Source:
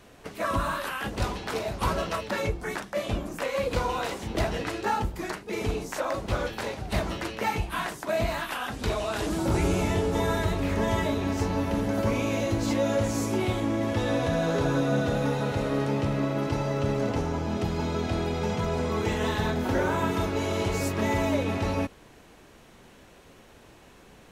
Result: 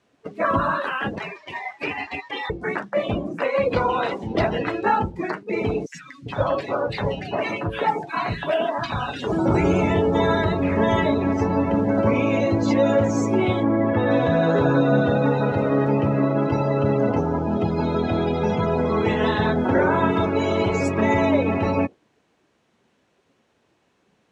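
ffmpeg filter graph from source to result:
ffmpeg -i in.wav -filter_complex "[0:a]asettb=1/sr,asplit=3[link_01][link_02][link_03];[link_01]atrim=end=1.184[link_04];[link_02]atrim=start=1.18:end=2.5,asetpts=PTS-STARTPTS,afade=type=in:duration=0.004:curve=qsin,afade=type=out:start_time=1.316:duration=0.004:curve=qsin,highpass=frequency=550:poles=1,aeval=exprs='val(0)*sin(2*PI*1400*n/s)':channel_layout=same,aeval=exprs='clip(val(0),-1,0.0299)':channel_layout=same[link_05];[link_03]atrim=start=2.496[link_06];[link_04][link_05]acrossfade=duration=0.004:curve1=hsin:curve2=qsin[link_07];[link_07][link_06]acrossfade=duration=0.004:curve1=qsin:curve2=hsin,asettb=1/sr,asplit=3[link_08][link_09][link_10];[link_08]atrim=end=5.864[link_11];[link_09]atrim=start=5.86:end=9.32,asetpts=PTS-STARTPTS,afade=type=in:duration=0.004:curve=qsin,afade=type=out:start_time=3.456:duration=0.004:curve=qsin,aecho=1:1:7.1:0.31,atrim=end_sample=152586,acrossover=split=230|1700[link_12][link_13][link_14];[link_12]adelay=80[link_15];[link_13]adelay=400[link_16];[link_15][link_16][link_14]amix=inputs=3:normalize=0,atrim=end_sample=152586[link_17];[link_10]atrim=start=9.316[link_18];[link_11][link_17]acrossfade=duration=0.004:curve1=hsin:curve2=qsin[link_19];[link_19][link_18]acrossfade=duration=0.004:curve1=qsin:curve2=hsin,asettb=1/sr,asplit=3[link_20][link_21][link_22];[link_20]atrim=end=13.634[link_23];[link_21]atrim=start=13.63:end=14.11,asetpts=PTS-STARTPTS,afade=type=in:duration=0.004:curve=qsin,afade=type=out:start_time=0.476:duration=0.004:curve=qsin,lowpass=2000,aemphasis=mode=production:type=75kf[link_24];[link_22]atrim=start=14.106[link_25];[link_23][link_24]acrossfade=duration=0.004:curve1=hsin:curve2=qsin[link_26];[link_26][link_25]acrossfade=duration=0.004:curve1=qsin:curve2=hsin,highpass=110,afftdn=noise_reduction=20:noise_floor=-36,lowpass=7500,volume=7.5dB" out.wav

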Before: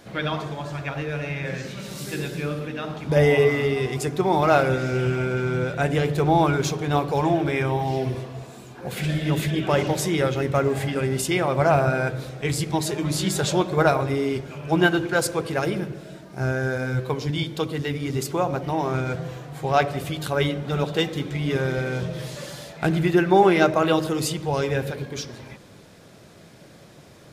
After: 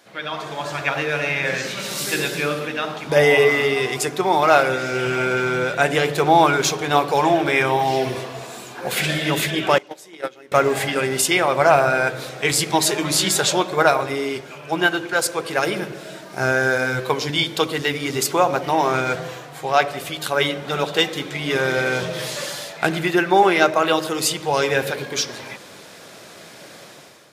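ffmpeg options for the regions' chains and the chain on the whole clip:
ffmpeg -i in.wav -filter_complex "[0:a]asettb=1/sr,asplit=3[link_01][link_02][link_03];[link_01]atrim=end=9.784[link_04];[link_02]atrim=start=9.78:end=10.52,asetpts=PTS-STARTPTS,afade=type=in:duration=0.004:curve=qsin,afade=type=out:start_time=0.736:duration=0.004:curve=qsin,agate=range=-24dB:threshold=-19dB:ratio=16:release=100:detection=peak,lowshelf=frequency=190:width_type=q:width=1.5:gain=-6.5[link_05];[link_03]atrim=start=10.516[link_06];[link_04][link_05]acrossfade=duration=0.004:curve1=hsin:curve2=qsin[link_07];[link_07][link_06]acrossfade=duration=0.004:curve1=qsin:curve2=hsin,highpass=frequency=750:poles=1,dynaudnorm=framelen=140:gausssize=7:maxgain=13dB,volume=-1dB" out.wav

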